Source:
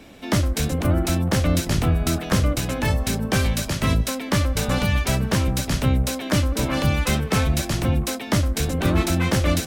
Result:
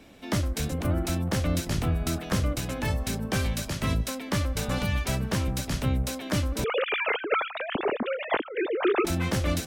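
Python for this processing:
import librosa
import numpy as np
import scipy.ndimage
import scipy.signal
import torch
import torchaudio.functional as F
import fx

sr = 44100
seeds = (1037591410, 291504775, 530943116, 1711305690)

y = fx.sine_speech(x, sr, at=(6.64, 9.05))
y = y * 10.0 ** (-6.5 / 20.0)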